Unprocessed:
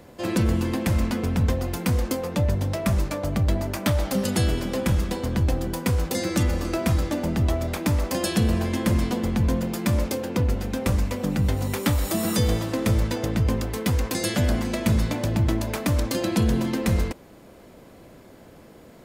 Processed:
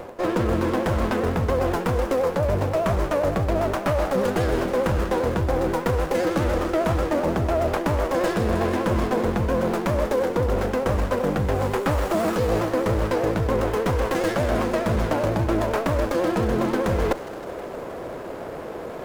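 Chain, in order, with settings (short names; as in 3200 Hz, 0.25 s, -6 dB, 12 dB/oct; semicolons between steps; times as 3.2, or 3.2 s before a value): in parallel at -6.5 dB: bit-crush 6-bit; on the sum: band shelf 790 Hz +11 dB 2.6 oct; reverse; compressor 6:1, threshold -27 dBFS, peak gain reduction 17.5 dB; reverse; vibrato 10 Hz 76 cents; thin delay 0.158 s, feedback 69%, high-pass 2100 Hz, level -10.5 dB; running maximum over 9 samples; gain +7 dB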